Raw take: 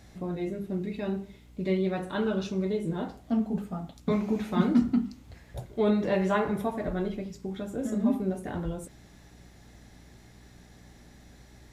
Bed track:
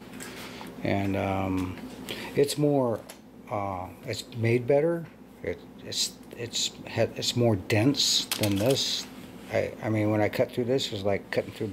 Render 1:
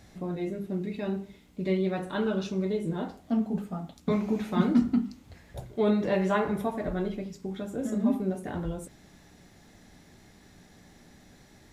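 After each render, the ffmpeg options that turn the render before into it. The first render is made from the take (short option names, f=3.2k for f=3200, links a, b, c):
-af "bandreject=f=60:t=h:w=4,bandreject=f=120:t=h:w=4"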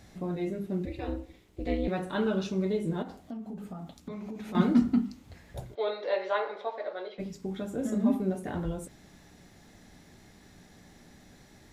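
-filter_complex "[0:a]asettb=1/sr,asplit=3[a][b][c];[a]atrim=end=0.854[d];[b]atrim=start=0.85:end=1.88,asetpts=PTS-STARTPTS,afade=t=in:d=0.004:c=qsin,afade=t=out:st=1.026:d=0.004:c=qsin,aeval=exprs='val(0)*sin(2*PI*130*n/s)':c=same[e];[c]atrim=start=1.876[f];[d][e]acrossfade=d=0.004:c1=hsin:c2=qsin[g];[g][f]acrossfade=d=0.004:c1=qsin:c2=hsin,asettb=1/sr,asplit=3[h][i][j];[h]atrim=end=3.024[k];[i]atrim=start=3.02:end=4.55,asetpts=PTS-STARTPTS,afade=t=in:d=0.004:c=qsin,afade=t=out:st=1.526:d=0.004:c=qsin,acompressor=threshold=-36dB:ratio=8:attack=3.2:release=140:knee=1:detection=peak[l];[j]atrim=start=4.546[m];[k][l]acrossfade=d=0.004:c1=hsin:c2=qsin[n];[n][m]acrossfade=d=0.004:c1=qsin:c2=hsin,asplit=3[o][p][q];[o]afade=t=out:st=5.74:d=0.02[r];[p]highpass=f=500:w=0.5412,highpass=f=500:w=1.3066,equalizer=f=510:t=q:w=4:g=4,equalizer=f=730:t=q:w=4:g=-3,equalizer=f=1.1k:t=q:w=4:g=-3,equalizer=f=1.7k:t=q:w=4:g=-3,equalizer=f=2.7k:t=q:w=4:g=-4,equalizer=f=4.1k:t=q:w=4:g=6,lowpass=f=4.4k:w=0.5412,lowpass=f=4.4k:w=1.3066,afade=t=in:st=5.74:d=0.02,afade=t=out:st=7.18:d=0.02[s];[q]afade=t=in:st=7.18:d=0.02[t];[r][s][t]amix=inputs=3:normalize=0"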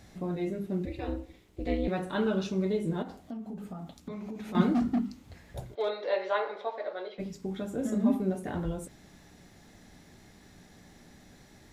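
-filter_complex "[0:a]asettb=1/sr,asplit=3[a][b][c];[a]atrim=end=4.724[d];[b]atrim=start=4.72:end=5.99,asetpts=PTS-STARTPTS,afade=t=in:d=0.004:c=qsin,afade=t=out:st=1.266:d=0.004:c=qsin,volume=23dB,asoftclip=hard,volume=-23dB[e];[c]atrim=start=5.986[f];[d][e]acrossfade=d=0.004:c1=hsin:c2=qsin[g];[g][f]acrossfade=d=0.004:c1=qsin:c2=hsin"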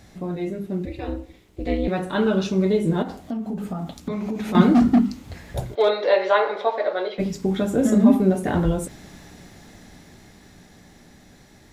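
-filter_complex "[0:a]dynaudnorm=f=310:g=17:m=9dB,asplit=2[a][b];[b]alimiter=limit=-14dB:level=0:latency=1:release=254,volume=-3dB[c];[a][c]amix=inputs=2:normalize=0"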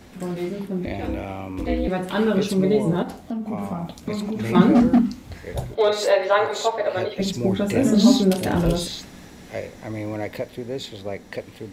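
-filter_complex "[1:a]volume=-4dB[a];[0:a][a]amix=inputs=2:normalize=0"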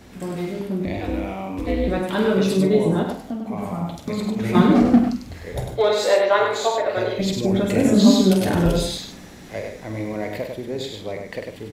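-filter_complex "[0:a]asplit=2[a][b];[b]adelay=47,volume=-9dB[c];[a][c]amix=inputs=2:normalize=0,asplit=2[d][e];[e]aecho=0:1:99:0.562[f];[d][f]amix=inputs=2:normalize=0"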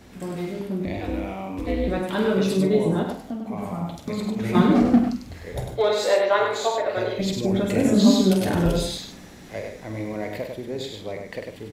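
-af "volume=-2.5dB"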